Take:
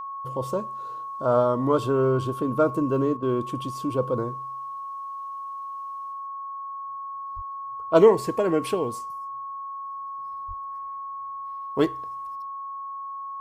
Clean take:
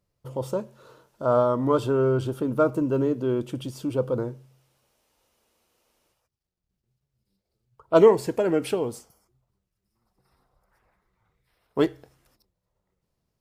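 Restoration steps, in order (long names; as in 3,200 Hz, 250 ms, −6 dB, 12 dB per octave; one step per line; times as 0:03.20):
notch filter 1,100 Hz, Q 30
high-pass at the plosives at 0:07.35/0:10.47
repair the gap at 0:03.17, 52 ms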